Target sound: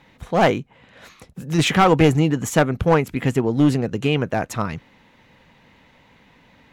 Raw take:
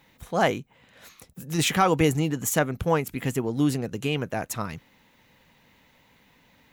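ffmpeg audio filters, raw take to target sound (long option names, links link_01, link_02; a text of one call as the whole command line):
ffmpeg -i in.wav -af "aemphasis=mode=reproduction:type=50fm,aeval=exprs='clip(val(0),-1,0.106)':channel_layout=same,volume=7dB" out.wav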